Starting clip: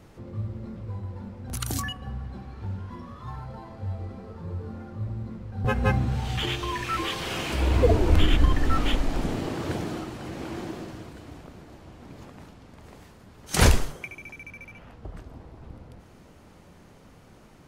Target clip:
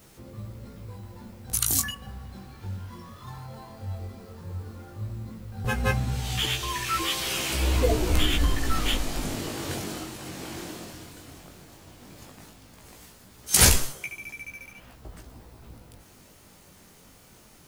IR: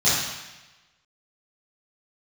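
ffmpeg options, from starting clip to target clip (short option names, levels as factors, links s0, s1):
-af "acrusher=bits=11:mix=0:aa=0.000001,crystalizer=i=4.5:c=0,flanger=delay=15:depth=7.9:speed=0.14,volume=0.891"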